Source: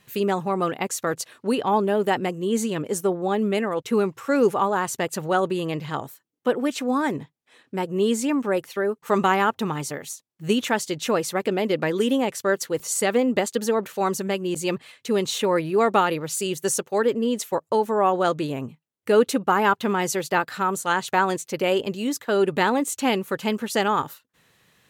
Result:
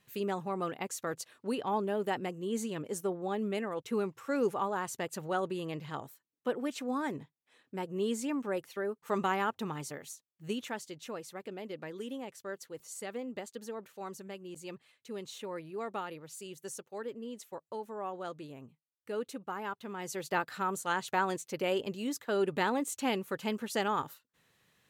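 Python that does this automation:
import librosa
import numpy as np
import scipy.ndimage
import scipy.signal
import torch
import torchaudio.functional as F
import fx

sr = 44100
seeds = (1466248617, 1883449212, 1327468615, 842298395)

y = fx.gain(x, sr, db=fx.line((10.09, -11.0), (11.15, -19.0), (19.9, -19.0), (20.31, -9.5)))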